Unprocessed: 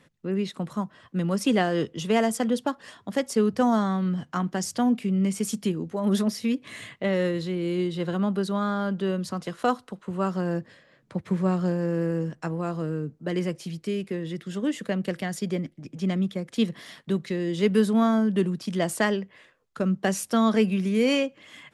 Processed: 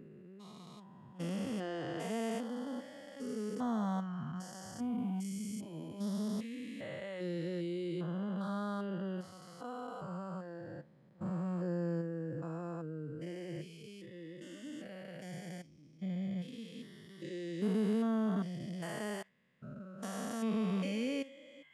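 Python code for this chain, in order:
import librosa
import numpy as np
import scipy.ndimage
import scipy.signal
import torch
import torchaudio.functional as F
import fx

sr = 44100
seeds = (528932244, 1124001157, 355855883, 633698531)

y = fx.spec_steps(x, sr, hold_ms=400)
y = fx.noise_reduce_blind(y, sr, reduce_db=9)
y = F.gain(torch.from_numpy(y), -9.0).numpy()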